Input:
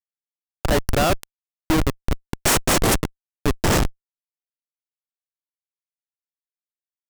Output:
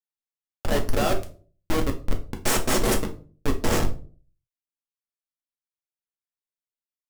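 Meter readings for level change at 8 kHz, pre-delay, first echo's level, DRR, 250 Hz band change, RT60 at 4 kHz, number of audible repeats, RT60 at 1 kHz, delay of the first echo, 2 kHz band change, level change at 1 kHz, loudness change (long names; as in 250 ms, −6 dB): −6.0 dB, 4 ms, no echo audible, 2.5 dB, −4.5 dB, 0.30 s, no echo audible, 0.35 s, no echo audible, −5.5 dB, −5.0 dB, −4.5 dB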